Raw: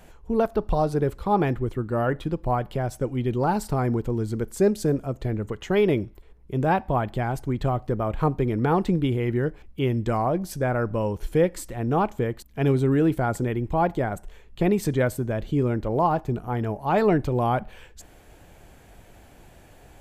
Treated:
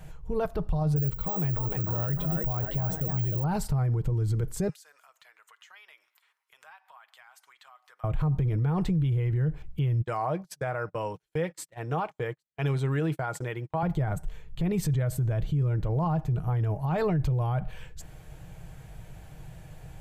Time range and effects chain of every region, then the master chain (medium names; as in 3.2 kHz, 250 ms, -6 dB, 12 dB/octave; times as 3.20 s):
0.96–3.44 s: frequency-shifting echo 301 ms, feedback 47%, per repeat +65 Hz, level -7.5 dB + careless resampling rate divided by 2×, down filtered, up zero stuff
4.69–8.04 s: high-pass 1.1 kHz 24 dB/octave + compression 3:1, threshold -54 dBFS
10.02–13.83 s: frequency weighting A + gate -39 dBFS, range -34 dB
whole clip: resonant low shelf 190 Hz +7 dB, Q 3; comb 6.4 ms, depth 32%; peak limiter -19 dBFS; trim -1.5 dB